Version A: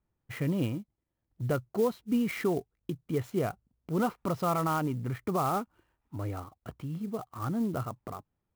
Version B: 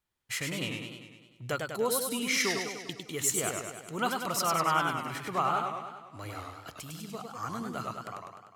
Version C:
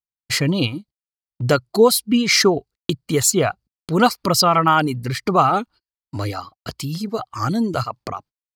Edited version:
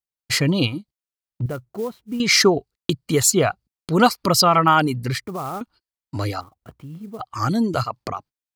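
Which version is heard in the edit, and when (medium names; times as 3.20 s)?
C
1.46–2.20 s: from A
5.21–5.61 s: from A
6.41–7.20 s: from A
not used: B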